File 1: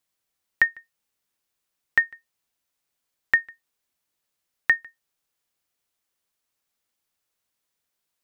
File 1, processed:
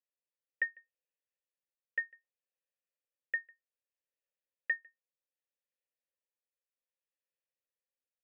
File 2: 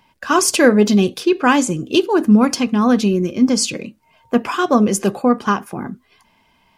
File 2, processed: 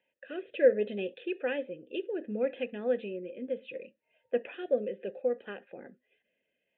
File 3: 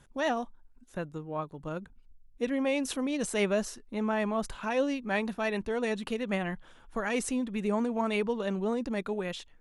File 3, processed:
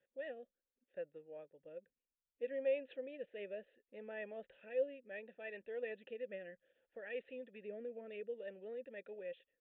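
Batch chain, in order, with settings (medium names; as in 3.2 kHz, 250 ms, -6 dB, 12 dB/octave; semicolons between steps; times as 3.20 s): resampled via 8 kHz; rotary cabinet horn 0.65 Hz; vowel filter e; trim -3 dB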